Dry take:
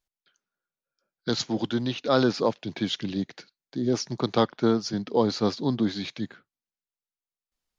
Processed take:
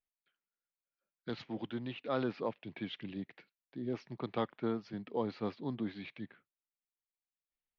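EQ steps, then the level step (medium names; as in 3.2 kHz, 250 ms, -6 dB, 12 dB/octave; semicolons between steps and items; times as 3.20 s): four-pole ladder low-pass 3 kHz, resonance 40%; peaking EQ 1.5 kHz -4 dB 0.21 oct; -4.5 dB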